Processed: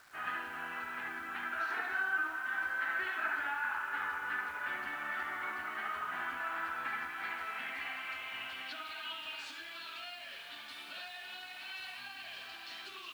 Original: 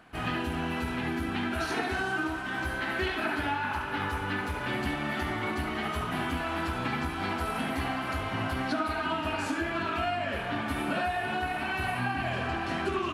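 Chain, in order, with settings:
band-pass filter sweep 1,500 Hz → 4,100 Hz, 0:06.64–0:09.81
bit-depth reduction 10 bits, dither none

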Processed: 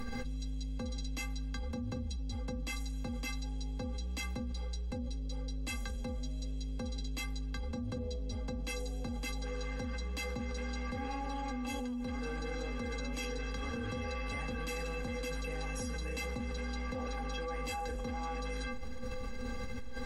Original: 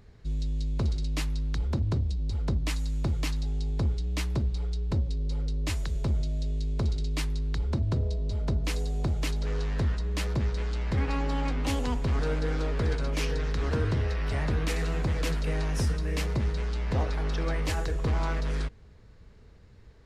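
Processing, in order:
stiff-string resonator 240 Hz, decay 0.26 s, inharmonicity 0.03
envelope flattener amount 100%
level −3 dB

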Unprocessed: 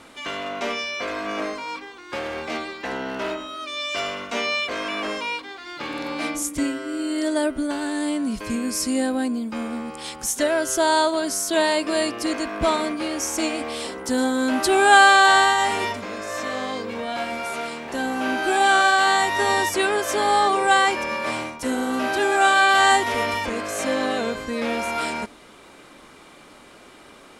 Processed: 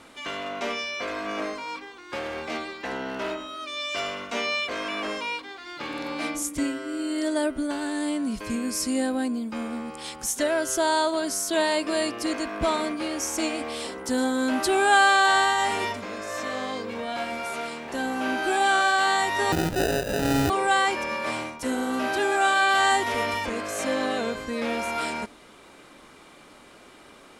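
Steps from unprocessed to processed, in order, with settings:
in parallel at −3 dB: brickwall limiter −12.5 dBFS, peak gain reduction 10 dB
0:19.52–0:20.50: on the sum: sample-rate reduction 1,100 Hz, jitter 0%
level −7.5 dB

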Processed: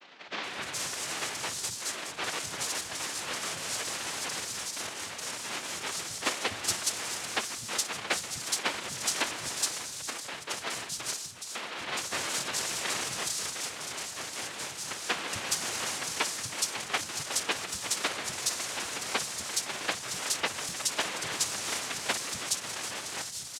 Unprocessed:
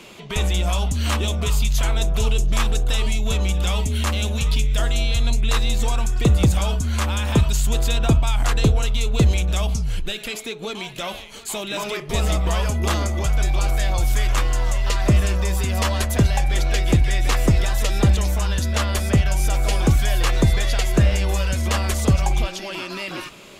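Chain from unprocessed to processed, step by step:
channel vocoder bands 8, square 308 Hz
soft clipping −12.5 dBFS, distortion −14 dB
cochlear-implant simulation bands 1
three-band delay without the direct sound mids, lows, highs 250/420 ms, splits 190/3,900 Hz
level −6 dB

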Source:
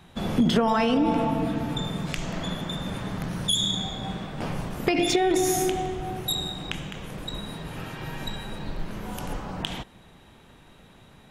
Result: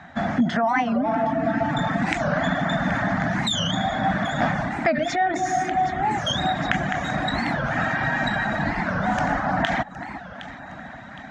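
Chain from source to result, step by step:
high-pass filter 67 Hz
high-shelf EQ 6,000 Hz −7 dB
notch filter 520 Hz, Q 15
on a send: delay that swaps between a low-pass and a high-pass 382 ms, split 1,700 Hz, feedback 66%, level −13 dB
on the sum: reverb reduction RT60 0.52 s
drawn EQ curve 160 Hz 0 dB, 270 Hz +6 dB, 410 Hz −12 dB, 690 Hz +13 dB, 1,000 Hz +3 dB, 1,800 Hz +15 dB, 2,700 Hz −4 dB, 6,900 Hz 0 dB, 12,000 Hz −29 dB
in parallel at 0 dB: brickwall limiter −23 dBFS, peak gain reduction 17 dB
on the sum: speech leveller within 5 dB 0.5 s
wow of a warped record 45 rpm, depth 250 cents
level −1.5 dB

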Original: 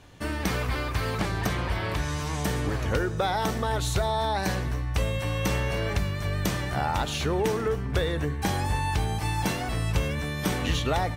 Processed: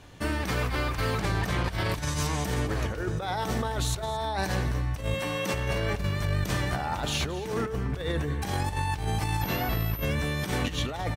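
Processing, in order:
0:01.64–0:02.27: bass and treble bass +3 dB, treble +8 dB
0:05.14–0:05.54: high-pass filter 160 Hz 24 dB per octave
compressor whose output falls as the input rises −28 dBFS, ratio −0.5
single-tap delay 221 ms −16 dB
0:09.41–0:10.05: switching amplifier with a slow clock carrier 13,000 Hz

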